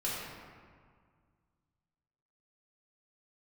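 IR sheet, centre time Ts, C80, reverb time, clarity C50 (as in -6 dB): 113 ms, 0.5 dB, 1.9 s, -2.0 dB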